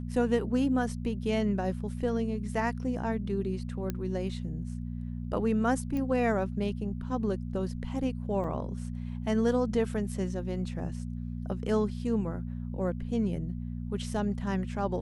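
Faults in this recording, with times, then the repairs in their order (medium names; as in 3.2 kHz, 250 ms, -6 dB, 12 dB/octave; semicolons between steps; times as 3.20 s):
hum 60 Hz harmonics 4 -36 dBFS
3.90 s: pop -18 dBFS
5.97 s: pop -23 dBFS
8.44 s: dropout 2.5 ms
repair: de-click; de-hum 60 Hz, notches 4; interpolate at 8.44 s, 2.5 ms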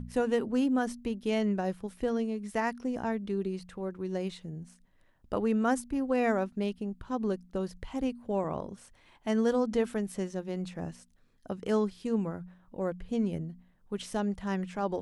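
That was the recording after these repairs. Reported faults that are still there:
nothing left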